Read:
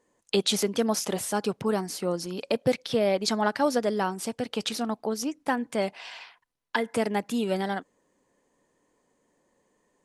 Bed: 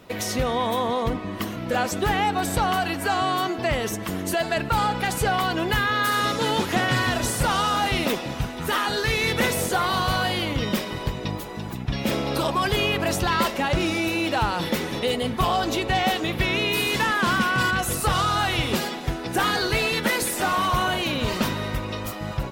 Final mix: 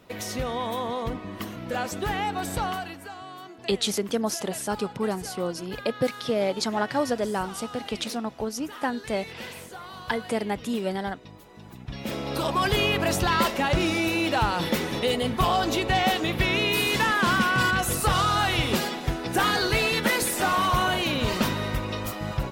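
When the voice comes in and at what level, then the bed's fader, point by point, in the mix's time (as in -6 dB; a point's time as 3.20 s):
3.35 s, -1.0 dB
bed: 2.66 s -5.5 dB
3.15 s -18 dB
11.29 s -18 dB
12.62 s -0.5 dB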